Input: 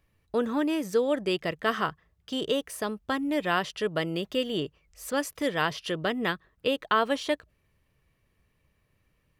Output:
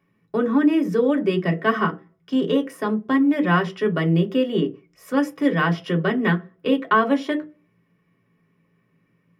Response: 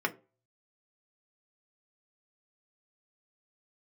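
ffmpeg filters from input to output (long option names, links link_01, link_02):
-filter_complex "[0:a]equalizer=frequency=180:width_type=o:width=1.7:gain=10.5[link_01];[1:a]atrim=start_sample=2205,afade=type=out:start_time=0.39:duration=0.01,atrim=end_sample=17640[link_02];[link_01][link_02]afir=irnorm=-1:irlink=0,volume=-4dB"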